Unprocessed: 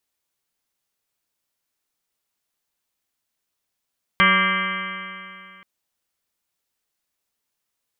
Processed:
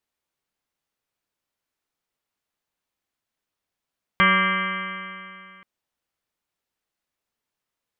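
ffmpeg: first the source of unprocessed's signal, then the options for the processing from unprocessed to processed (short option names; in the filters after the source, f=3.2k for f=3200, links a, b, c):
-f lavfi -i "aevalsrc='0.0794*pow(10,-3*t/2.53)*sin(2*PI*187.21*t)+0.0211*pow(10,-3*t/2.53)*sin(2*PI*375.72*t)+0.0316*pow(10,-3*t/2.53)*sin(2*PI*566.78*t)+0.00891*pow(10,-3*t/2.53)*sin(2*PI*761.64*t)+0.0237*pow(10,-3*t/2.53)*sin(2*PI*961.51*t)+0.15*pow(10,-3*t/2.53)*sin(2*PI*1167.53*t)+0.0355*pow(10,-3*t/2.53)*sin(2*PI*1380.79*t)+0.119*pow(10,-3*t/2.53)*sin(2*PI*1602.33*t)+0.0501*pow(10,-3*t/2.53)*sin(2*PI*1833.08*t)+0.141*pow(10,-3*t/2.53)*sin(2*PI*2073.93*t)+0.0891*pow(10,-3*t/2.53)*sin(2*PI*2325.68*t)+0.0119*pow(10,-3*t/2.53)*sin(2*PI*2589.07*t)+0.0398*pow(10,-3*t/2.53)*sin(2*PI*2864.77*t)+0.0631*pow(10,-3*t/2.53)*sin(2*PI*3153.36*t)':d=1.43:s=44100"
-af "highshelf=f=4.2k:g=-10"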